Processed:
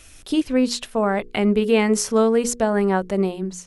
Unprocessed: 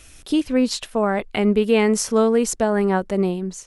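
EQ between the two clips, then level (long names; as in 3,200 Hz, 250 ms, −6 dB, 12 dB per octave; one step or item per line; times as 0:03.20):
mains-hum notches 60/120/180/240/300/360/420/480 Hz
0.0 dB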